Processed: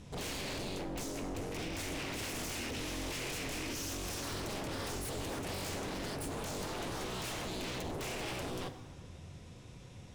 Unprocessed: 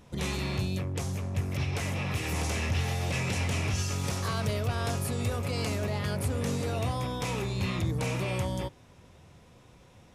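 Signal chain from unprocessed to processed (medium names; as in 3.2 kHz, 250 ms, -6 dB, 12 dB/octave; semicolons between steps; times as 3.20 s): low-pass 9.8 kHz 12 dB/octave; peaking EQ 960 Hz -7.5 dB 2.7 oct; peak limiter -29 dBFS, peak gain reduction 8 dB; wavefolder -40 dBFS; plate-style reverb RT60 1.7 s, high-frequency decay 0.55×, DRR 9.5 dB; trim +5 dB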